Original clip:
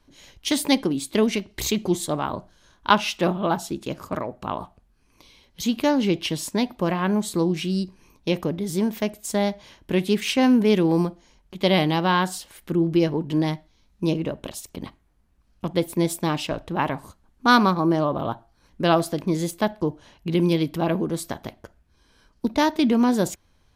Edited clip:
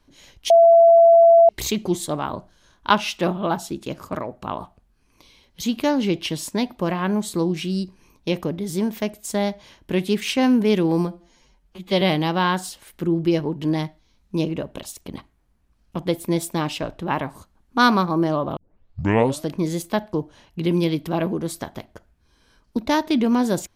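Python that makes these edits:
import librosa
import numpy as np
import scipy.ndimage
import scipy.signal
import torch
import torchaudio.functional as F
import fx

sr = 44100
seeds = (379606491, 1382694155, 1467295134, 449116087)

y = fx.edit(x, sr, fx.bleep(start_s=0.5, length_s=0.99, hz=672.0, db=-8.0),
    fx.stretch_span(start_s=11.07, length_s=0.63, factor=1.5),
    fx.tape_start(start_s=18.25, length_s=0.91), tone=tone)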